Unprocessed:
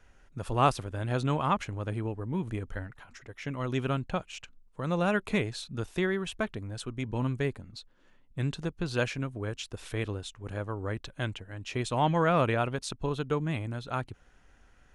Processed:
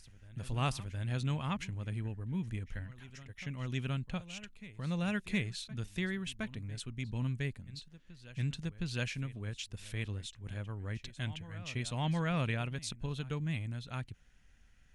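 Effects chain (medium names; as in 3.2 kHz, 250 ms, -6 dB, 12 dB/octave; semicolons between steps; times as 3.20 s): high-order bell 640 Hz -10.5 dB 2.6 oct; reverse echo 715 ms -17 dB; trim -3 dB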